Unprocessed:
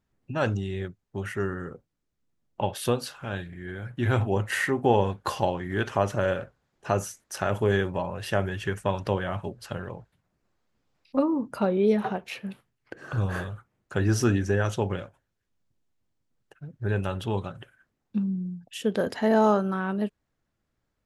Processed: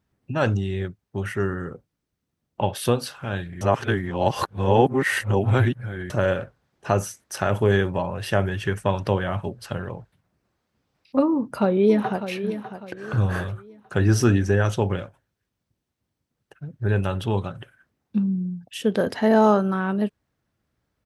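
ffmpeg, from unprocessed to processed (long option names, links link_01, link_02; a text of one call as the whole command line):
ffmpeg -i in.wav -filter_complex "[0:a]asplit=2[link_01][link_02];[link_02]afade=type=in:start_time=11.29:duration=0.01,afade=type=out:start_time=12.31:duration=0.01,aecho=0:1:600|1200|1800|2400:0.281838|0.0986434|0.0345252|0.0120838[link_03];[link_01][link_03]amix=inputs=2:normalize=0,asplit=3[link_04][link_05][link_06];[link_04]atrim=end=3.612[link_07];[link_05]atrim=start=3.608:end=6.102,asetpts=PTS-STARTPTS,areverse[link_08];[link_06]atrim=start=6.098[link_09];[link_07][link_08]acrossfade=duration=0.004:curve1=hsin:curve2=hsin[link_10];[link_10][link_09]acrossfade=duration=0.004:curve1=hsin:curve2=hsin,highpass=62,lowshelf=frequency=110:gain=5,bandreject=frequency=7000:width=12,volume=3.5dB" out.wav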